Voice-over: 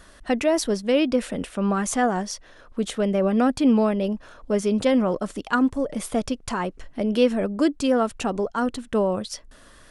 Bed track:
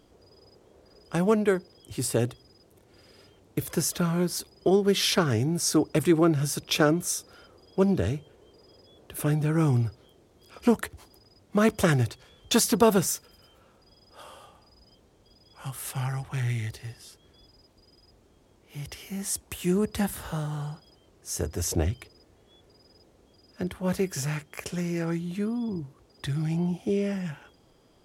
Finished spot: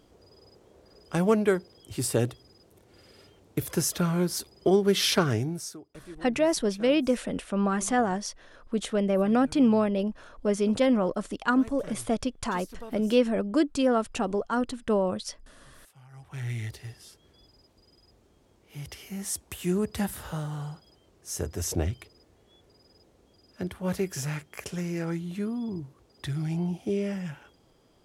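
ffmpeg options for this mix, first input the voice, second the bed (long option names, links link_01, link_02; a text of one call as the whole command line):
ffmpeg -i stem1.wav -i stem2.wav -filter_complex "[0:a]adelay=5950,volume=-3dB[link_01];[1:a]volume=21.5dB,afade=type=out:start_time=5.26:duration=0.51:silence=0.0668344,afade=type=in:start_time=16.09:duration=0.55:silence=0.0841395[link_02];[link_01][link_02]amix=inputs=2:normalize=0" out.wav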